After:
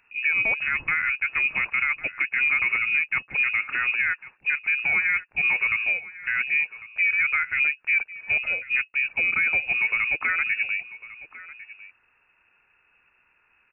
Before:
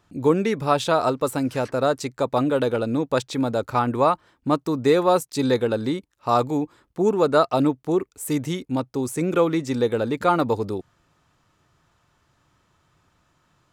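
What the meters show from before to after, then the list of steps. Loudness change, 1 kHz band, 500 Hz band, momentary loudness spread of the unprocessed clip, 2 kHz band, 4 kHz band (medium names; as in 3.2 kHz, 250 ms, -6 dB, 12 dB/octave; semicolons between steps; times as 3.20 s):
+0.5 dB, -12.5 dB, -26.5 dB, 8 LU, +16.0 dB, -5.5 dB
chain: peak limiter -15 dBFS, peak gain reduction 9 dB; delay 1100 ms -18 dB; frequency inversion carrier 2.7 kHz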